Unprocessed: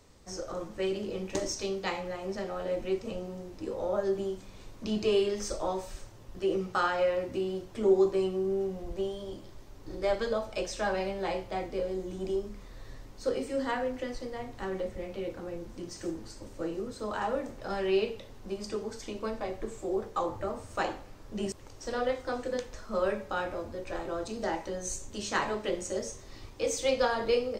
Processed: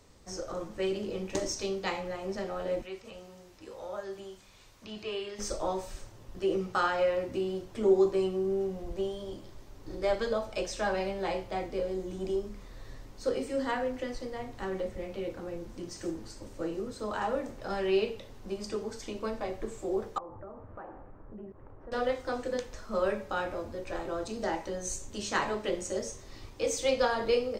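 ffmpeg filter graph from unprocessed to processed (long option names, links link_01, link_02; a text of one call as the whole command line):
ffmpeg -i in.wav -filter_complex "[0:a]asettb=1/sr,asplit=3[link_01][link_02][link_03];[link_01]atrim=end=2.824[link_04];[link_02]atrim=start=2.82:end=5.39,asetpts=PTS-STARTPTS,afade=type=in:duration=0.004:curve=qsin,afade=type=out:start_time=2.566:duration=0.004:curve=qsin,acrossover=split=3400[link_05][link_06];[link_06]acompressor=threshold=-57dB:ratio=4:attack=1:release=60[link_07];[link_05][link_07]amix=inputs=2:normalize=0,highpass=frequency=99:poles=1,equalizer=frequency=250:width=0.35:gain=-12.5[link_08];[link_03]atrim=start=5.386[link_09];[link_04][link_08]acrossfade=duration=0.004:curve1=hsin:curve2=qsin[link_10];[link_10][link_09]acrossfade=duration=0.004:curve1=qsin:curve2=hsin,asettb=1/sr,asplit=3[link_11][link_12][link_13];[link_11]atrim=end=20.184[link_14];[link_12]atrim=start=20.18:end=21.92,asetpts=PTS-STARTPTS,afade=type=in:duration=0.004:curve=qsin,afade=type=out:start_time=1.736:duration=0.004:curve=qsin,lowpass=frequency=1500:width=0.5412,lowpass=frequency=1500:width=1.3066,acompressor=threshold=-43dB:ratio=4:attack=3.2:release=140:knee=1:detection=peak[link_15];[link_13]atrim=start=21.916[link_16];[link_14][link_15]acrossfade=duration=0.004:curve1=hsin:curve2=qsin[link_17];[link_17][link_16]acrossfade=duration=0.004:curve1=qsin:curve2=hsin" out.wav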